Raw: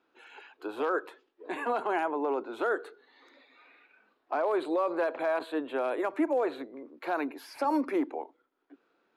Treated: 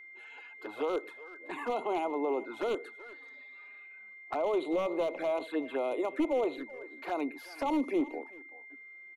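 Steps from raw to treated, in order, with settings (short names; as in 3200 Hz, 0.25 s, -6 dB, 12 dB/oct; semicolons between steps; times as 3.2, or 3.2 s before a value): one-sided fold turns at -22.5 dBFS; on a send: echo 0.381 s -19 dB; on the sum: envelope flanger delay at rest 5.7 ms, full sweep at -28 dBFS; whine 2100 Hz -48 dBFS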